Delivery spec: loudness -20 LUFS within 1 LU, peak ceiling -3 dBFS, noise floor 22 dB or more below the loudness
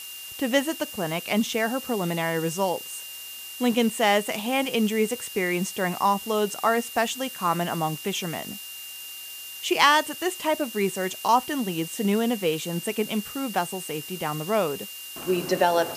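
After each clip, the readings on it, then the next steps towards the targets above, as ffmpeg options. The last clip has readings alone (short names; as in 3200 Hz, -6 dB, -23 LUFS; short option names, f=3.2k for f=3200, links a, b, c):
steady tone 2800 Hz; tone level -40 dBFS; noise floor -39 dBFS; noise floor target -48 dBFS; loudness -25.5 LUFS; peak -4.5 dBFS; loudness target -20.0 LUFS
-> -af "bandreject=f=2.8k:w=30"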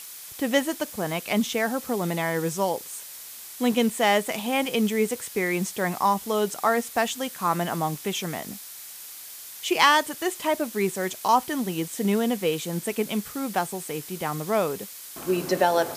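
steady tone none; noise floor -41 dBFS; noise floor target -48 dBFS
-> -af "afftdn=nr=7:nf=-41"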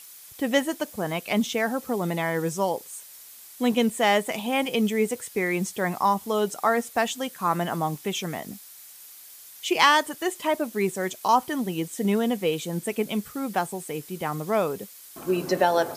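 noise floor -47 dBFS; noise floor target -48 dBFS
-> -af "afftdn=nr=6:nf=-47"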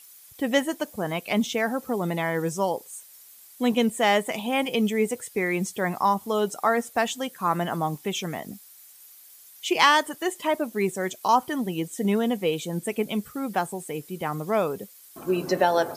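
noise floor -50 dBFS; loudness -25.5 LUFS; peak -5.0 dBFS; loudness target -20.0 LUFS
-> -af "volume=5.5dB,alimiter=limit=-3dB:level=0:latency=1"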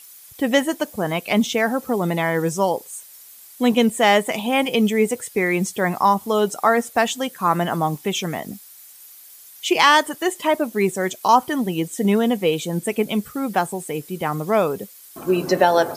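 loudness -20.5 LUFS; peak -3.0 dBFS; noise floor -45 dBFS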